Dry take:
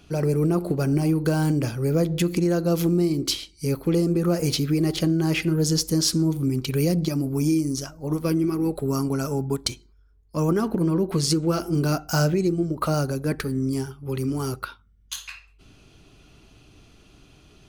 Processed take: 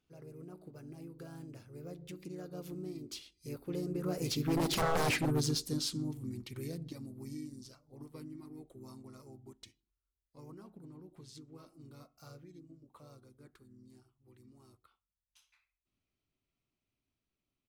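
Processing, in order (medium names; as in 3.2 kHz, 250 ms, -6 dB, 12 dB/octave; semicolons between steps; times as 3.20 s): Doppler pass-by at 4.91 s, 17 m/s, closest 2.8 m; bass shelf 75 Hz -4.5 dB; wavefolder -26.5 dBFS; harmony voices -3 st -5 dB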